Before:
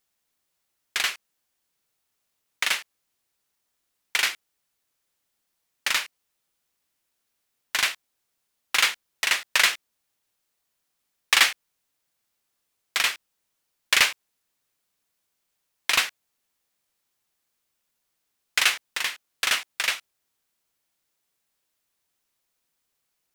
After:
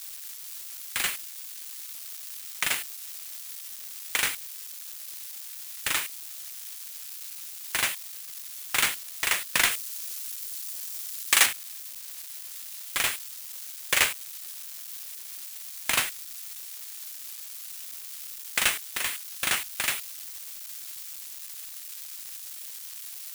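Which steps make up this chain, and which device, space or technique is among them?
budget class-D amplifier (switching dead time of 0.087 ms; switching spikes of -21.5 dBFS); 9.71–11.46 tone controls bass -10 dB, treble +4 dB; gain -1 dB

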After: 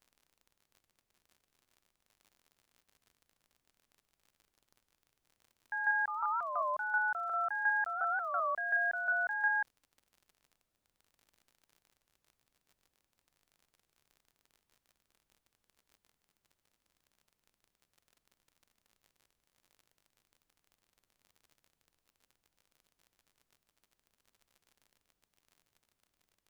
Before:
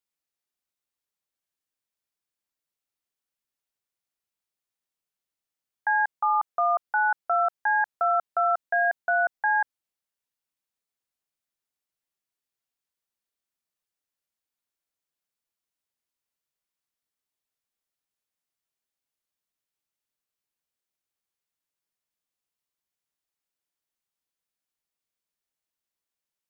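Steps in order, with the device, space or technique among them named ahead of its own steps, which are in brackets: bell 650 Hz -12.5 dB 2 oct; warped LP (record warp 33 1/3 rpm, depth 250 cents; crackle 28/s -47 dBFS; pink noise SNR 44 dB); reverse echo 0.147 s -4.5 dB; gain -2.5 dB

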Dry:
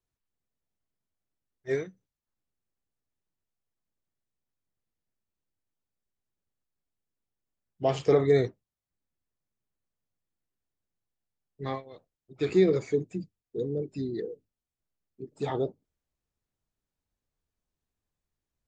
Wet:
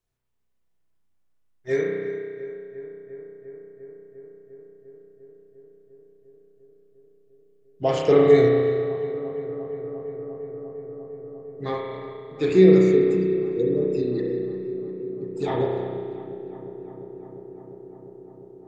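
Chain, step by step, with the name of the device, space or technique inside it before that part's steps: dub delay into a spring reverb (darkening echo 0.35 s, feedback 85%, low-pass 2400 Hz, level -14.5 dB; spring tank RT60 2 s, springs 32 ms, chirp 70 ms, DRR -1.5 dB); gain +3.5 dB

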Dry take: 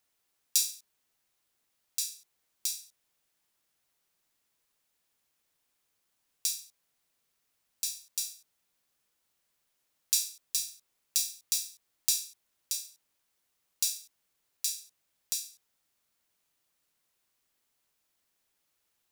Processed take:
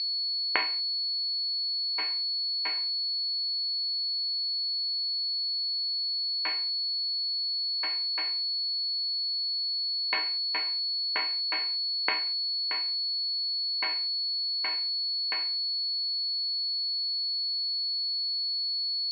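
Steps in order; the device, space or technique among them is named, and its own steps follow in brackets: toy sound module (decimation joined by straight lines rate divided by 4×; pulse-width modulation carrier 4400 Hz; speaker cabinet 580–4100 Hz, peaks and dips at 590 Hz -9 dB, 1200 Hz -7 dB, 2300 Hz +7 dB, 3500 Hz -8 dB); gain +4.5 dB

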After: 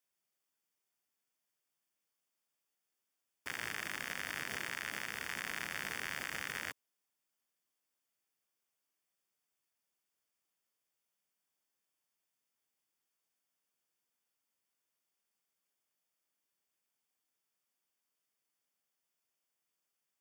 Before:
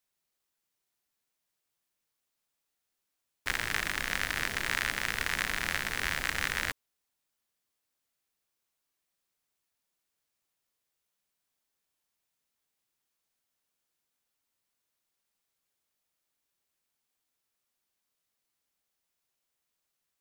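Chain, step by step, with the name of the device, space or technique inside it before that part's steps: PA system with an anti-feedback notch (HPF 130 Hz 12 dB/oct; Butterworth band-stop 4000 Hz, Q 6.8; limiter -20 dBFS, peak gain reduction 9 dB); gain -3.5 dB

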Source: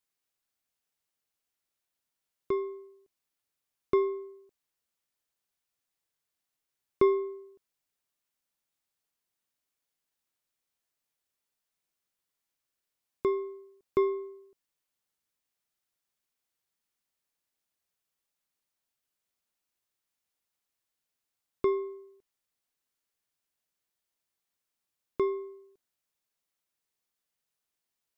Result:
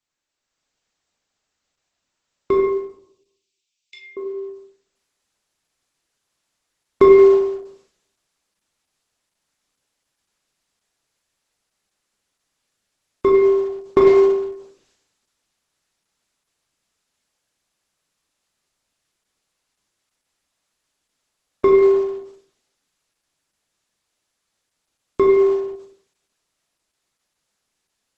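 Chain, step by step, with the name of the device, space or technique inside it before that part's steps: 2.6–4.17 elliptic high-pass 2400 Hz, stop band 50 dB; speakerphone in a meeting room (reverb RT60 0.70 s, pre-delay 15 ms, DRR -0.5 dB; AGC gain up to 7 dB; gain +4 dB; Opus 12 kbps 48000 Hz)

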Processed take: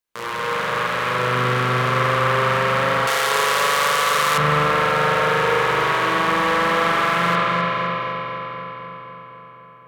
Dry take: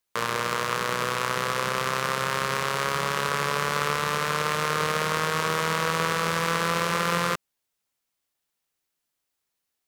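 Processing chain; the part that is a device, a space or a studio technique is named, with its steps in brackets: dub delay into a spring reverb (darkening echo 0.256 s, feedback 71%, low-pass 4500 Hz, level -3 dB; spring tank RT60 3.2 s, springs 40 ms, chirp 40 ms, DRR -9.5 dB); 3.07–4.38 tone controls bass -12 dB, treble +15 dB; gain -5 dB

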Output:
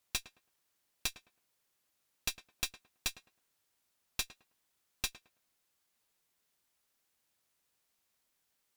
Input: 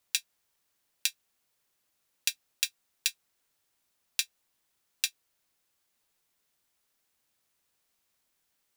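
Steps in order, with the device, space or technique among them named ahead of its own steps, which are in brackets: rockabilly slapback (tube stage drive 28 dB, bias 0.75; tape echo 0.107 s, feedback 29%, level -11.5 dB, low-pass 1500 Hz); gain +2 dB

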